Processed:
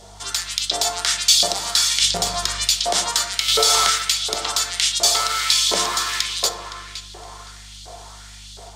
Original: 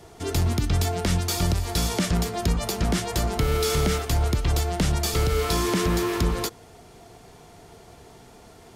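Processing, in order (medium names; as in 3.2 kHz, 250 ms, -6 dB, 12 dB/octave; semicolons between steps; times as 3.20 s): high-order bell 5.4 kHz +10.5 dB; level rider gain up to 5 dB; filtered feedback delay 515 ms, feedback 42%, low-pass 3.5 kHz, level -10 dB; LFO high-pass saw up 1.4 Hz 540–3700 Hz; hum 50 Hz, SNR 27 dB; 2.01–2.65 s: tone controls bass +9 dB, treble 0 dB; on a send at -6 dB: reverberation RT60 0.95 s, pre-delay 5 ms; 3.48–3.90 s: on the sum: level flattener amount 70%; trim -1 dB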